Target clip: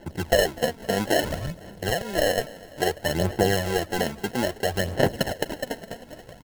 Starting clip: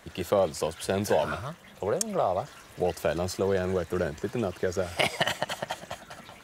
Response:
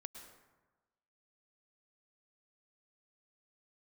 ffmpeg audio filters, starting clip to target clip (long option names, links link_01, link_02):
-af "lowpass=3500,equalizer=frequency=2400:width=3.3:gain=-12,acrusher=samples=37:mix=1:aa=0.000001,aphaser=in_gain=1:out_gain=1:delay=4.5:decay=0.5:speed=0.6:type=sinusoidal,aecho=1:1:250|500|750|1000:0.0891|0.0455|0.0232|0.0118,volume=2.5dB"